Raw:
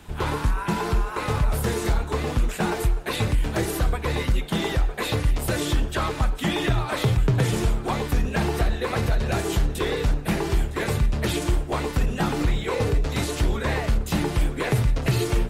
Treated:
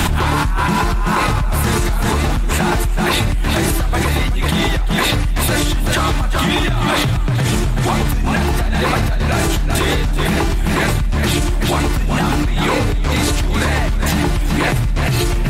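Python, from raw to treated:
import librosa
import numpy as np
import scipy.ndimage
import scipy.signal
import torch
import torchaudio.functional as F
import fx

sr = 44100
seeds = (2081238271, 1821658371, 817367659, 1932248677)

y = fx.peak_eq(x, sr, hz=450.0, db=-9.5, octaves=0.45)
y = fx.echo_feedback(y, sr, ms=382, feedback_pct=26, wet_db=-7)
y = fx.env_flatten(y, sr, amount_pct=100)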